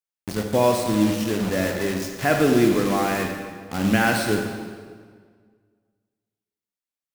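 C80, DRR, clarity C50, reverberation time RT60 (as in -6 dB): 5.5 dB, 3.0 dB, 4.0 dB, 1.8 s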